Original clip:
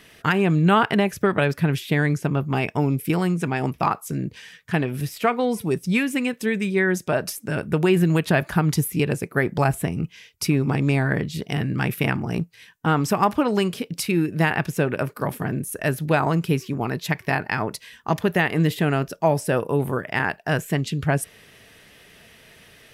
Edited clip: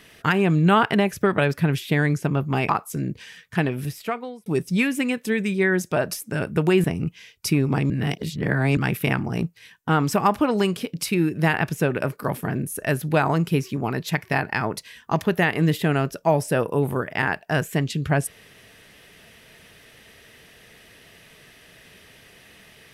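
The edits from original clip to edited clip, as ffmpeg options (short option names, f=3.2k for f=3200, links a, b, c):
-filter_complex "[0:a]asplit=6[a][b][c][d][e][f];[a]atrim=end=2.692[g];[b]atrim=start=3.848:end=5.62,asetpts=PTS-STARTPTS,afade=t=out:st=1.032:d=0.74[h];[c]atrim=start=5.62:end=8.002,asetpts=PTS-STARTPTS,afade=t=in:d=0.004:c=hsin[i];[d]atrim=start=9.808:end=10.872[j];[e]atrim=start=10.868:end=11.742,asetpts=PTS-STARTPTS,areverse[k];[f]atrim=start=11.738[l];[h][i]concat=n=2:v=0:a=1[m];[g][m]acrossfade=d=0.004:c1=hsin:c2=hsin[n];[n][j]acrossfade=d=0.004:c1=hsin:c2=hsin[o];[o][k]acrossfade=d=0.004:c1=hsin:c2=hsin[p];[p][l]acrossfade=d=0.004:c1=hsin:c2=hsin"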